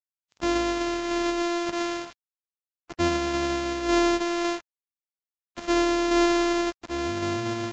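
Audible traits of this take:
a buzz of ramps at a fixed pitch in blocks of 128 samples
tremolo saw down 1.8 Hz, depth 30%
a quantiser's noise floor 8 bits, dither none
Ogg Vorbis

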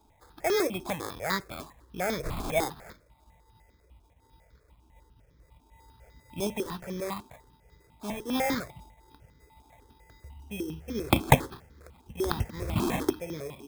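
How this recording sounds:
aliases and images of a low sample rate 2,900 Hz, jitter 0%
notches that jump at a steady rate 10 Hz 520–2,700 Hz

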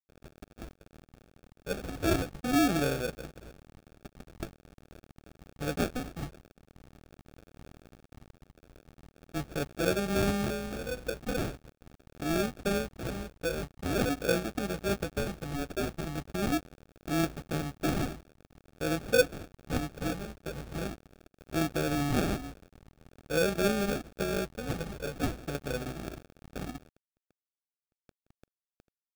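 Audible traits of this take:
a quantiser's noise floor 8 bits, dither none
phaser sweep stages 4, 0.43 Hz, lowest notch 300–2,500 Hz
aliases and images of a low sample rate 1,000 Hz, jitter 0%

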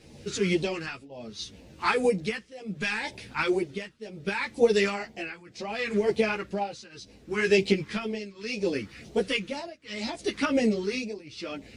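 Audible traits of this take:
phaser sweep stages 2, 2 Hz, lowest notch 640–1,300 Hz
tremolo triangle 0.69 Hz, depth 95%
a shimmering, thickened sound

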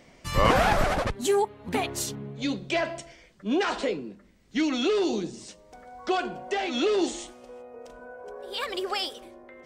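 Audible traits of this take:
background noise floor −56 dBFS
spectral slope −4.5 dB per octave

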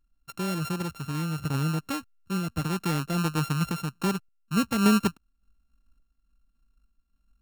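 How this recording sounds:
a buzz of ramps at a fixed pitch in blocks of 32 samples
sample-and-hold tremolo 3.5 Hz

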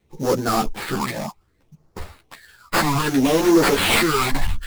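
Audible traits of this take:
phaser sweep stages 8, 0.63 Hz, lowest notch 410–2,900 Hz
aliases and images of a low sample rate 6,100 Hz, jitter 20%
a shimmering, thickened sound

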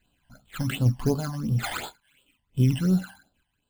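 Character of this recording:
sample-and-hold tremolo
aliases and images of a low sample rate 5,600 Hz, jitter 0%
phaser sweep stages 12, 2.8 Hz, lowest notch 400–2,100 Hz

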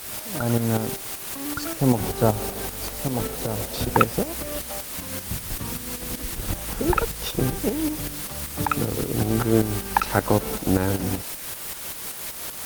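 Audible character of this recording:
a quantiser's noise floor 6 bits, dither triangular
tremolo saw up 5.2 Hz, depth 60%
Opus

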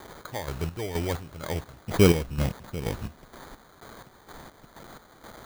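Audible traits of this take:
a quantiser's noise floor 8 bits, dither triangular
chopped level 2.1 Hz, depth 65%, duty 45%
aliases and images of a low sample rate 2,700 Hz, jitter 0%

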